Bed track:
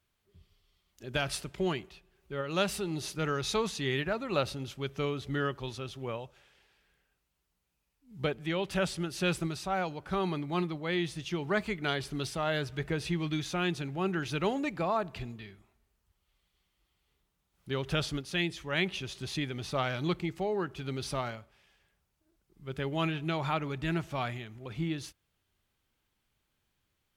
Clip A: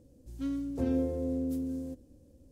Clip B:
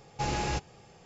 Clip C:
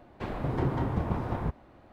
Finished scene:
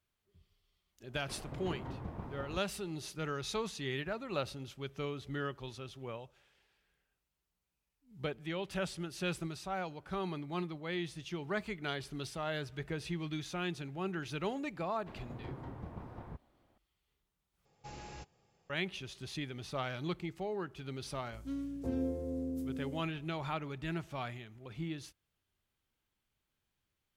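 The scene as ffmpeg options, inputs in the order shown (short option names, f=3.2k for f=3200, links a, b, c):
-filter_complex "[3:a]asplit=2[a][b];[0:a]volume=-6.5dB,asplit=2[c][d];[c]atrim=end=17.654[e];[2:a]atrim=end=1.05,asetpts=PTS-STARTPTS,volume=-17.5dB[f];[d]atrim=start=18.696[g];[a]atrim=end=1.92,asetpts=PTS-STARTPTS,volume=-13.5dB,afade=t=in:d=0.004:c=hsin,afade=t=out:st=1.916:d=0.004:c=hsin,adelay=1080[h];[b]atrim=end=1.92,asetpts=PTS-STARTPTS,volume=-16dB,afade=t=in:d=0.004:c=hsin,afade=t=out:st=1.916:d=0.004:c=hsin,adelay=14860[i];[1:a]atrim=end=2.51,asetpts=PTS-STARTPTS,volume=-5.5dB,afade=t=in:d=0.004:c=hsin,afade=t=out:st=2.506:d=0.004:c=hsin,adelay=21060[j];[e][f]acrossfade=d=0.004:c1=hsin:c2=hsin[k];[k][g]acrossfade=d=0.004:c1=hsin:c2=hsin[l];[l][h][i][j]amix=inputs=4:normalize=0"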